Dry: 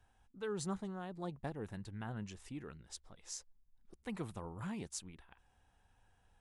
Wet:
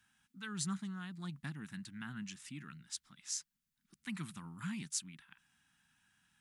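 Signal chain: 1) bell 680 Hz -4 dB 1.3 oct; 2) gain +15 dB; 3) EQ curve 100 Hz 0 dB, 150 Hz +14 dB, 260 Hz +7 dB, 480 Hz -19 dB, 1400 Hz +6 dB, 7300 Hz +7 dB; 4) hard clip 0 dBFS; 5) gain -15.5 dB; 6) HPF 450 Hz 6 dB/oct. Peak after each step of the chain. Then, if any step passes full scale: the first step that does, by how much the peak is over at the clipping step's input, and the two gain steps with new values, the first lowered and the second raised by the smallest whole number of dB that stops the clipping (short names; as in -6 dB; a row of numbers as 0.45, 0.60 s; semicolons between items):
-27.0, -12.0, -5.0, -5.0, -20.5, -20.5 dBFS; no overload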